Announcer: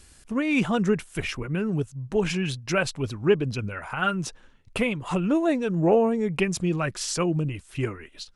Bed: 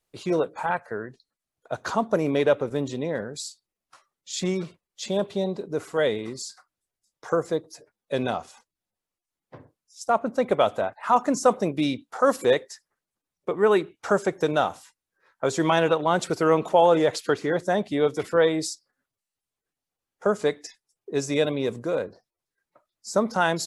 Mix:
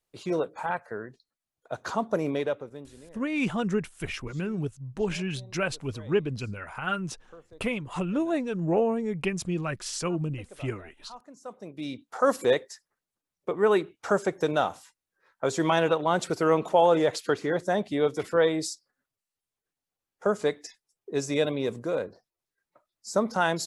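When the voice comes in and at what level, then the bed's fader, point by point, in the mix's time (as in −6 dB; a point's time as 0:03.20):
2.85 s, −4.5 dB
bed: 0:02.29 −4 dB
0:03.22 −26 dB
0:11.35 −26 dB
0:12.12 −2.5 dB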